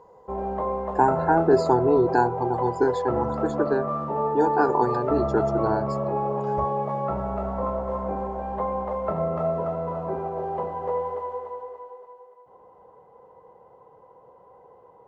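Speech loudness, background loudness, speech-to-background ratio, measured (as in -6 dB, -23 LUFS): -24.0 LUFS, -28.0 LUFS, 4.0 dB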